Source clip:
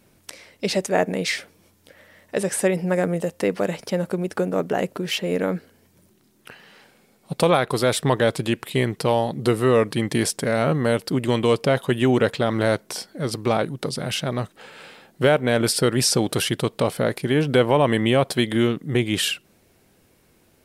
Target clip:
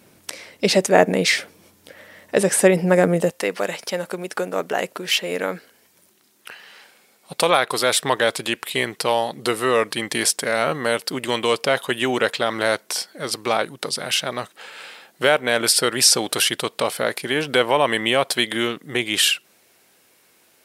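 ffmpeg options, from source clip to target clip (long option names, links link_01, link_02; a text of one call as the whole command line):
ffmpeg -i in.wav -af "asetnsamples=nb_out_samples=441:pad=0,asendcmd='3.31 highpass f 1100',highpass=frequency=160:poles=1,volume=6.5dB" out.wav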